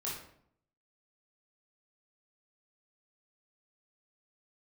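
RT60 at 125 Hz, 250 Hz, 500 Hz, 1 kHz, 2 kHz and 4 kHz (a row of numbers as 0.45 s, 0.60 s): 0.80 s, 0.80 s, 0.70 s, 0.60 s, 0.55 s, 0.45 s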